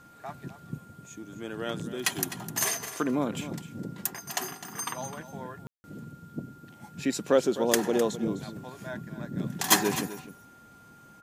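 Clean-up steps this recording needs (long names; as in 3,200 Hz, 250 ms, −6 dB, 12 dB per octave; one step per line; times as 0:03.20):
clipped peaks rebuilt −8.5 dBFS
notch filter 1,400 Hz, Q 30
ambience match 0:05.67–0:05.84
echo removal 256 ms −13.5 dB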